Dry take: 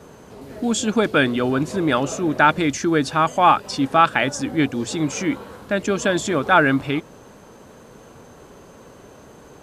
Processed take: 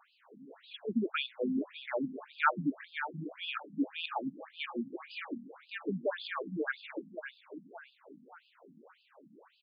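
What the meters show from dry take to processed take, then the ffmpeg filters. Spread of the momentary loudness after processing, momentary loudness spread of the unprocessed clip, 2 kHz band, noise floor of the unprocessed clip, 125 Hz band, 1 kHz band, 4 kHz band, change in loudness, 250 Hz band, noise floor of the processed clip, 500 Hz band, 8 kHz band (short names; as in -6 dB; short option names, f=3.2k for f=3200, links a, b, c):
18 LU, 9 LU, -16.0 dB, -46 dBFS, -20.5 dB, -19.5 dB, -14.0 dB, -17.0 dB, -15.5 dB, -69 dBFS, -17.0 dB, under -40 dB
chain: -af "aecho=1:1:594|1188|1782|2376:0.251|0.0929|0.0344|0.0127,afftfilt=real='re*between(b*sr/1024,200*pow(3600/200,0.5+0.5*sin(2*PI*1.8*pts/sr))/1.41,200*pow(3600/200,0.5+0.5*sin(2*PI*1.8*pts/sr))*1.41)':imag='im*between(b*sr/1024,200*pow(3600/200,0.5+0.5*sin(2*PI*1.8*pts/sr))/1.41,200*pow(3600/200,0.5+0.5*sin(2*PI*1.8*pts/sr))*1.41)':win_size=1024:overlap=0.75,volume=-8.5dB"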